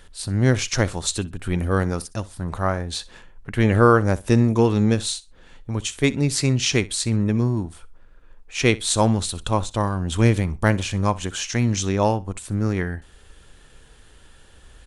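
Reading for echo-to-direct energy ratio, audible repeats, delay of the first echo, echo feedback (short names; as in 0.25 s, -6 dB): -20.0 dB, 2, 62 ms, 20%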